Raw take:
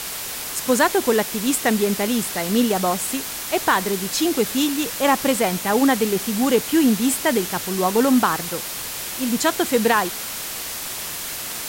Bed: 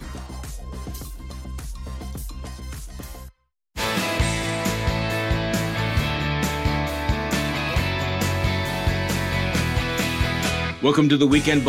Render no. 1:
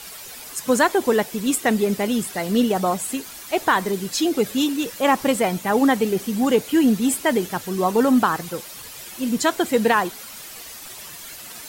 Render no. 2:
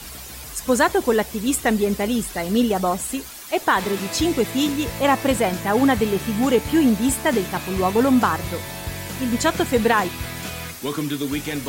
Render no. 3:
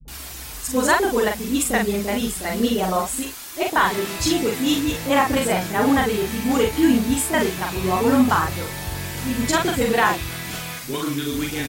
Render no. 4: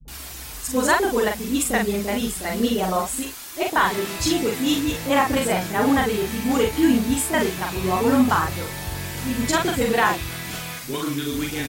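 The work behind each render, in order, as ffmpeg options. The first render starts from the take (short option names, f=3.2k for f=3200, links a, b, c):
-af "afftdn=nr=11:nf=-30"
-filter_complex "[1:a]volume=-8.5dB[a];[0:a][a]amix=inputs=2:normalize=0"
-filter_complex "[0:a]asplit=2[a][b];[b]adelay=43,volume=-3.5dB[c];[a][c]amix=inputs=2:normalize=0,acrossover=split=170|510[d][e][f];[e]adelay=50[g];[f]adelay=80[h];[d][g][h]amix=inputs=3:normalize=0"
-af "volume=-1dB"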